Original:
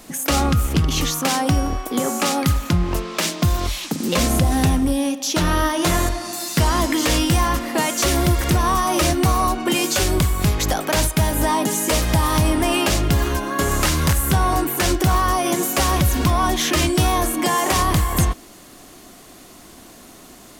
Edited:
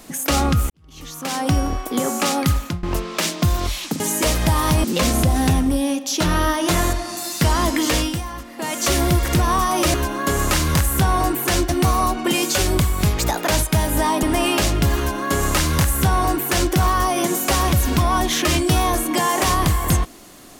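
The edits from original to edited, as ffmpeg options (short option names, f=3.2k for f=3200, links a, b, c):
-filter_complex "[0:a]asplit=12[a][b][c][d][e][f][g][h][i][j][k][l];[a]atrim=end=0.7,asetpts=PTS-STARTPTS,afade=t=out:st=0.696:d=0.004:c=hsin[m];[b]atrim=start=0.7:end=2.83,asetpts=PTS-STARTPTS,afade=t=in:d=0.82:c=qua,afade=t=out:st=1.87:d=0.26:silence=0.0841395[n];[c]atrim=start=2.83:end=4.002,asetpts=PTS-STARTPTS,afade=t=in:d=0.004:c=hsin:silence=0.0841395[o];[d]atrim=start=11.668:end=12.512[p];[e]atrim=start=3.998:end=7.39,asetpts=PTS-STARTPTS,afade=t=out:st=3.082:d=0.31:silence=0.251189[q];[f]atrim=start=7.39:end=7.71,asetpts=PTS-STARTPTS,volume=-12dB[r];[g]atrim=start=7.71:end=9.102,asetpts=PTS-STARTPTS,afade=t=in:d=0.31:silence=0.251189[s];[h]atrim=start=13.258:end=15.012[t];[i]atrim=start=9.098:end=10.604[u];[j]atrim=start=10.6:end=10.91,asetpts=PTS-STARTPTS,asetrate=49392,aresample=44100,atrim=end_sample=12206,asetpts=PTS-STARTPTS[v];[k]atrim=start=10.906:end=11.672[w];[l]atrim=start=12.508[x];[m][n][o]concat=n=3:v=0:a=1[y];[y][p]acrossfade=d=0.004:c1=hsin:c2=hsin[z];[q][r][s]concat=n=3:v=0:a=1[aa];[z][aa]acrossfade=d=0.004:c1=hsin:c2=hsin[ab];[ab][t]acrossfade=d=0.004:c1=hsin:c2=hsin[ac];[ac][u]acrossfade=d=0.004:c1=hsin:c2=hsin[ad];[ad][v]acrossfade=d=0.004:c1=hsin:c2=hsin[ae];[ae][w]acrossfade=d=0.004:c1=hsin:c2=hsin[af];[af][x]acrossfade=d=0.004:c1=hsin:c2=hsin"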